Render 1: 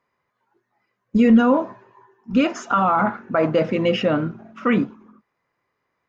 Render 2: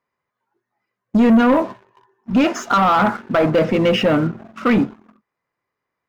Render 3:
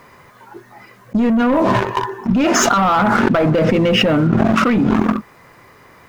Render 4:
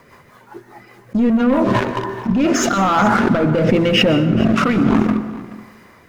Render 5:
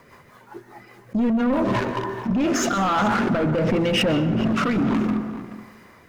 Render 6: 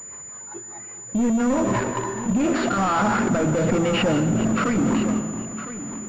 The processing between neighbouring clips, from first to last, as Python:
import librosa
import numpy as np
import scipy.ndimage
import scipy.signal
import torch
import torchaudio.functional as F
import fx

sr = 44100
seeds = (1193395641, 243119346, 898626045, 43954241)

y1 = fx.leveller(x, sr, passes=2)
y1 = F.gain(torch.from_numpy(y1), -1.5).numpy()
y2 = fx.low_shelf(y1, sr, hz=160.0, db=6.0)
y2 = fx.env_flatten(y2, sr, amount_pct=100)
y2 = F.gain(torch.from_numpy(y2), -6.0).numpy()
y3 = fx.rotary_switch(y2, sr, hz=5.0, then_hz=1.1, switch_at_s=1.41)
y3 = y3 + 10.0 ** (-18.0 / 20.0) * np.pad(y3, (int(427 * sr / 1000.0), 0))[:len(y3)]
y3 = fx.rev_plate(y3, sr, seeds[0], rt60_s=1.1, hf_ratio=0.5, predelay_ms=110, drr_db=11.5)
y3 = F.gain(torch.from_numpy(y3), 1.0).numpy()
y4 = 10.0 ** (-12.5 / 20.0) * np.tanh(y3 / 10.0 ** (-12.5 / 20.0))
y4 = F.gain(torch.from_numpy(y4), -3.0).numpy()
y5 = y4 + 10.0 ** (-13.0 / 20.0) * np.pad(y4, (int(1008 * sr / 1000.0), 0))[:len(y4)]
y5 = np.repeat(y5[::4], 4)[:len(y5)]
y5 = fx.pwm(y5, sr, carrier_hz=7000.0)